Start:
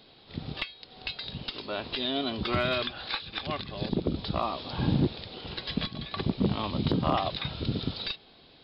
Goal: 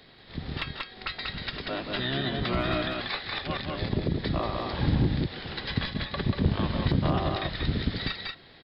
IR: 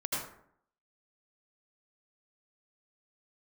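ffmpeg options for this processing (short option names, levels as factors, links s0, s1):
-filter_complex "[0:a]aecho=1:1:187:0.631,asplit=2[s0][s1];[s1]asetrate=22050,aresample=44100,atempo=2,volume=0.794[s2];[s0][s2]amix=inputs=2:normalize=0,acrossover=split=190[s3][s4];[s4]acompressor=threshold=0.0355:ratio=2[s5];[s3][s5]amix=inputs=2:normalize=0"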